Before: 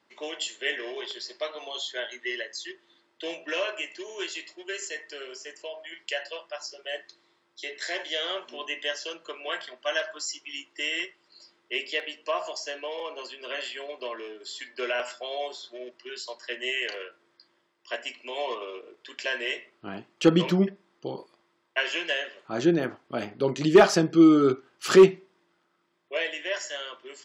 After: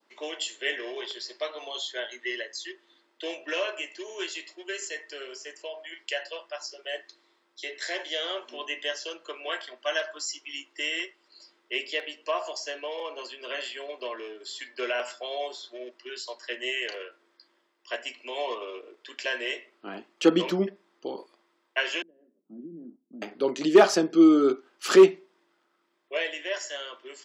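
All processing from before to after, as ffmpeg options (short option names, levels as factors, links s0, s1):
-filter_complex "[0:a]asettb=1/sr,asplit=3[s0][s1][s2];[s0]atrim=end=22.024[s3];[s1]atrim=start=22.02:end=23.22,asetpts=PTS-STARTPTS,afade=t=in:d=0.004:c=qsin,afade=t=out:st=1.196:d=0.004:c=qsin,acompressor=threshold=0.0501:ratio=10:attack=3.2:release=140:knee=1:detection=peak,asuperpass=centerf=210:order=4:qfactor=2[s4];[s2]atrim=start=23.216[s5];[s3][s4]acrossfade=d=0.004:c1=hsin:c2=qsin[s6];[s6][s5]acrossfade=d=0.004:c1=qsin:c2=hsin,adynamicequalizer=threshold=0.0112:dfrequency=1900:dqfactor=0.89:tfrequency=1900:tqfactor=0.89:attack=5:release=100:ratio=0.375:range=2:mode=cutabove:tftype=bell,highpass=f=230:w=0.5412,highpass=f=230:w=1.3066"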